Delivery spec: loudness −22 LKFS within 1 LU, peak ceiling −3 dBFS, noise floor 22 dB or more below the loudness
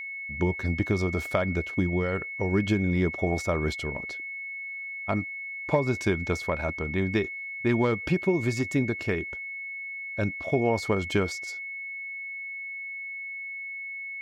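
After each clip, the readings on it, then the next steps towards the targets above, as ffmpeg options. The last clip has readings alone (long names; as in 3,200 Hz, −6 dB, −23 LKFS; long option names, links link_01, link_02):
interfering tone 2,200 Hz; level of the tone −34 dBFS; integrated loudness −28.5 LKFS; sample peak −9.5 dBFS; target loudness −22.0 LKFS
→ -af "bandreject=frequency=2200:width=30"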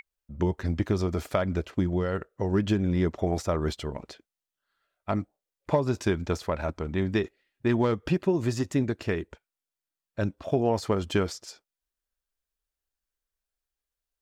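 interfering tone none found; integrated loudness −28.5 LKFS; sample peak −10.0 dBFS; target loudness −22.0 LKFS
→ -af "volume=6.5dB"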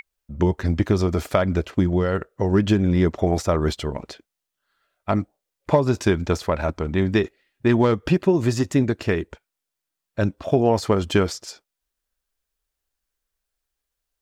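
integrated loudness −22.0 LKFS; sample peak −3.5 dBFS; background noise floor −84 dBFS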